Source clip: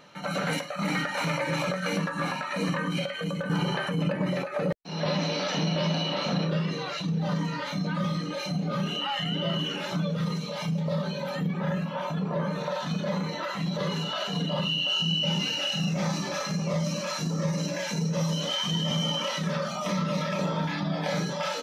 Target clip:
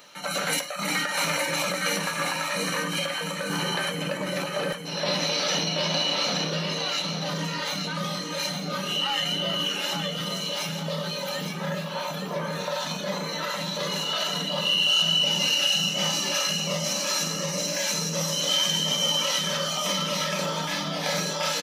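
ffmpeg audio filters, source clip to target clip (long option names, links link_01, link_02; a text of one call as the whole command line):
ffmpeg -i in.wav -filter_complex "[0:a]aeval=exprs='0.178*(cos(1*acos(clip(val(0)/0.178,-1,1)))-cos(1*PI/2))+0.00178*(cos(7*acos(clip(val(0)/0.178,-1,1)))-cos(7*PI/2))':channel_layout=same,acrossover=split=380[link_01][link_02];[link_01]equalizer=frequency=66:width=0.44:gain=-13[link_03];[link_02]crystalizer=i=3.5:c=0[link_04];[link_03][link_04]amix=inputs=2:normalize=0,aecho=1:1:861|1722|2583|3444:0.473|0.156|0.0515|0.017" out.wav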